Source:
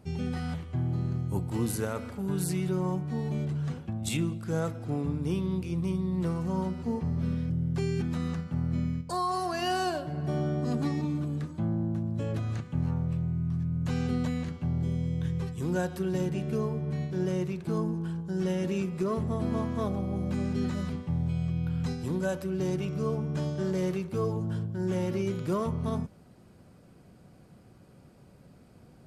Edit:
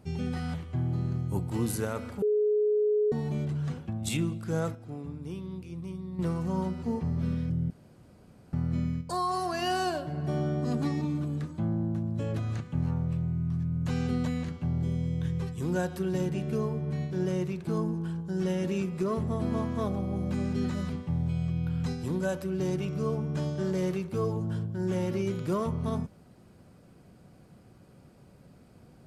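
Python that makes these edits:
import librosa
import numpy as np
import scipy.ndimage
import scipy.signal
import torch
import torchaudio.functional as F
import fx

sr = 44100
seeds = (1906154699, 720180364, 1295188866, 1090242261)

y = fx.edit(x, sr, fx.bleep(start_s=2.22, length_s=0.9, hz=421.0, db=-22.0),
    fx.clip_gain(start_s=4.75, length_s=1.44, db=-8.5),
    fx.room_tone_fill(start_s=7.7, length_s=0.83), tone=tone)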